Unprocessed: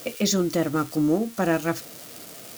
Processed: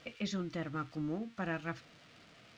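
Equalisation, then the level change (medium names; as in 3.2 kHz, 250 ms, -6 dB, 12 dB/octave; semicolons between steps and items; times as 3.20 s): distance through air 140 m; tone controls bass +3 dB, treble -13 dB; amplifier tone stack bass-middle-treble 5-5-5; +2.5 dB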